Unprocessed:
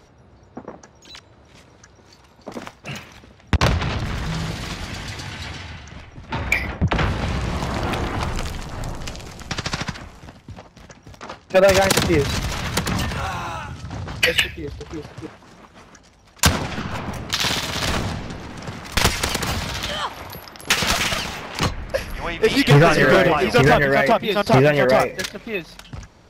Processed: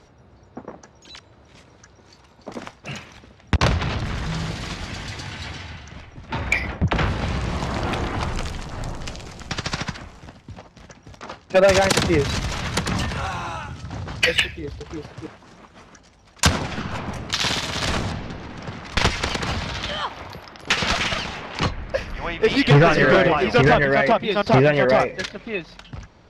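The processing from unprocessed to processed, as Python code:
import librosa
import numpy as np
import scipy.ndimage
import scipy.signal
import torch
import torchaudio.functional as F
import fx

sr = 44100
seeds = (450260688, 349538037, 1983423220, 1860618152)

y = fx.lowpass(x, sr, hz=fx.steps((0.0, 8800.0), (18.12, 5000.0)), slope=12)
y = F.gain(torch.from_numpy(y), -1.0).numpy()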